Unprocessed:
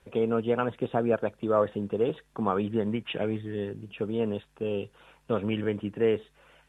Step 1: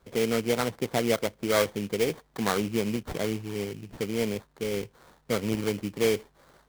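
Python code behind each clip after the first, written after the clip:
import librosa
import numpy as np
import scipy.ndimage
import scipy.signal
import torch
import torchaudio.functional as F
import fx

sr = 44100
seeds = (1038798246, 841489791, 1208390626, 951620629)

y = fx.sample_hold(x, sr, seeds[0], rate_hz=2700.0, jitter_pct=20)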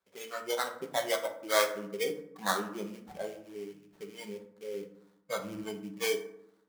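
y = fx.highpass(x, sr, hz=820.0, slope=6)
y = fx.noise_reduce_blind(y, sr, reduce_db=16)
y = fx.rev_fdn(y, sr, rt60_s=0.74, lf_ratio=1.5, hf_ratio=0.5, size_ms=31.0, drr_db=4.0)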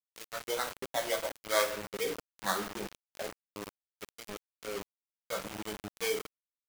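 y = fx.quant_dither(x, sr, seeds[1], bits=6, dither='none')
y = y * librosa.db_to_amplitude(-2.0)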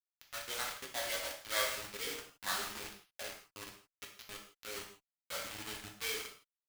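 y = scipy.ndimage.median_filter(x, 9, mode='constant')
y = fx.tone_stack(y, sr, knobs='5-5-5')
y = fx.rev_gated(y, sr, seeds[2], gate_ms=190, shape='falling', drr_db=0.5)
y = y * librosa.db_to_amplitude(6.5)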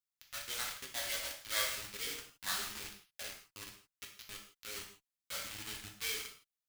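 y = fx.peak_eq(x, sr, hz=590.0, db=-8.0, octaves=2.6)
y = y * librosa.db_to_amplitude(1.5)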